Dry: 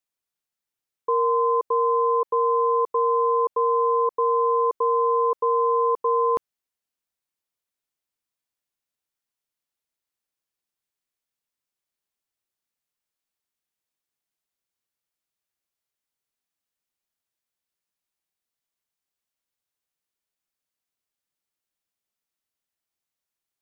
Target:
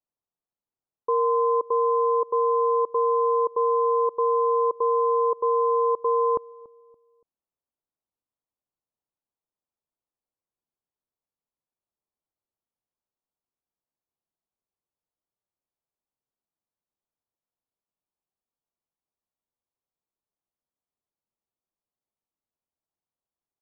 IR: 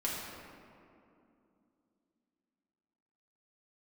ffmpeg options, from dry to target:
-filter_complex "[0:a]lowpass=f=1100:w=0.5412,lowpass=f=1100:w=1.3066,asplit=2[s0][s1];[s1]adelay=285,lowpass=f=810:p=1,volume=0.0891,asplit=2[s2][s3];[s3]adelay=285,lowpass=f=810:p=1,volume=0.42,asplit=2[s4][s5];[s5]adelay=285,lowpass=f=810:p=1,volume=0.42[s6];[s0][s2][s4][s6]amix=inputs=4:normalize=0"

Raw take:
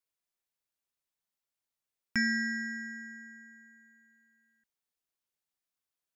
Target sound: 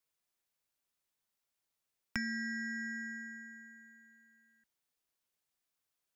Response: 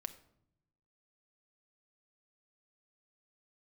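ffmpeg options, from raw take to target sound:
-filter_complex "[0:a]acrossover=split=120[s0][s1];[s1]acompressor=threshold=0.0112:ratio=6[s2];[s0][s2]amix=inputs=2:normalize=0,volume=1.41"

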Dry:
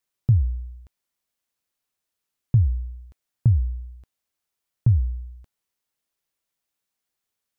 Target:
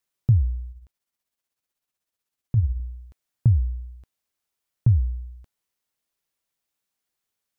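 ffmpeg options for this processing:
-filter_complex "[0:a]asettb=1/sr,asplit=3[s0][s1][s2];[s0]atrim=end=0.714[s3];[s1]atrim=start=0.71:end=2.8,asetpts=PTS-STARTPTS,afade=t=in:d=0.004:c=qsin,afade=t=out:st=2.086:d=0.004:c=qsin,tremolo=f=16:d=0.54[s4];[s2]atrim=start=2.796[s5];[s3][s4]acrossfade=d=0.004:c1=hsin:c2=qsin[s6];[s6][s5]acrossfade=d=0.004:c1=qsin:c2=hsin"

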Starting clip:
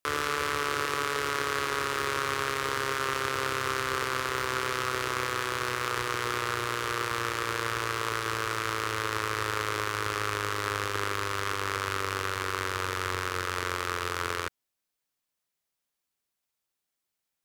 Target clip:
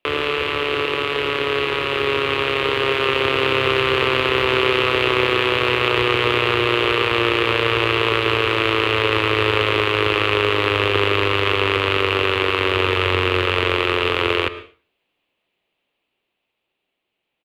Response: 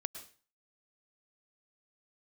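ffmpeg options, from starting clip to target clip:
-filter_complex "[0:a]acrossover=split=140|3000[s0][s1][s2];[s1]acompressor=threshold=0.00891:ratio=1.5[s3];[s0][s3][s2]amix=inputs=3:normalize=0,firequalizer=gain_entry='entry(100,0);entry(370,9);entry(1500,-4);entry(2700,8);entry(5500,-24)':delay=0.05:min_phase=1,dynaudnorm=f=500:g=11:m=1.68,highshelf=f=3400:g=9.5,asplit=2[s4][s5];[1:a]atrim=start_sample=2205,highshelf=f=5800:g=-11.5[s6];[s5][s6]afir=irnorm=-1:irlink=0,volume=1.33[s7];[s4][s7]amix=inputs=2:normalize=0,volume=1.26"

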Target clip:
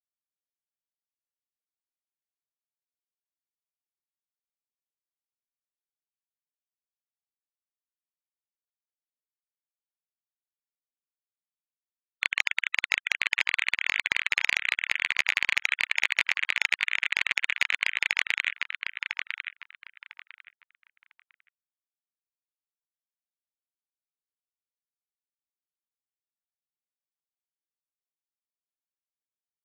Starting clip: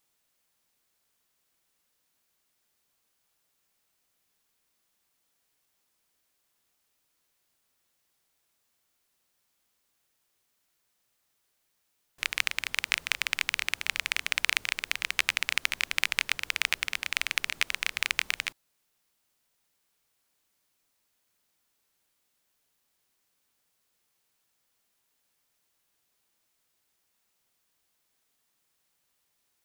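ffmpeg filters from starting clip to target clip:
-filter_complex "[0:a]adynamicsmooth=sensitivity=6.5:basefreq=1600,lowshelf=f=250:g=-7,afftfilt=real='re*gte(hypot(re,im),0.0316)':imag='im*gte(hypot(re,im),0.0316)':win_size=1024:overlap=0.75,asplit=2[s0][s1];[s1]adelay=1001,lowpass=f=2500:p=1,volume=0.422,asplit=2[s2][s3];[s3]adelay=1001,lowpass=f=2500:p=1,volume=0.22,asplit=2[s4][s5];[s5]adelay=1001,lowpass=f=2500:p=1,volume=0.22[s6];[s0][s2][s4][s6]amix=inputs=4:normalize=0,asplit=2[s7][s8];[s8]highpass=f=720:p=1,volume=6.31,asoftclip=type=tanh:threshold=0.668[s9];[s7][s9]amix=inputs=2:normalize=0,lowpass=f=2800:p=1,volume=0.501"

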